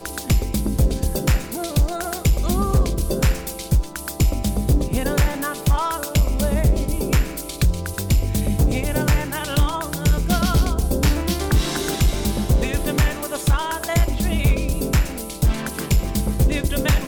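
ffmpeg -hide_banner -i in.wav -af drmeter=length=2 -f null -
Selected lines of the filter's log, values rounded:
Channel 1: DR: 5.5
Overall DR: 5.5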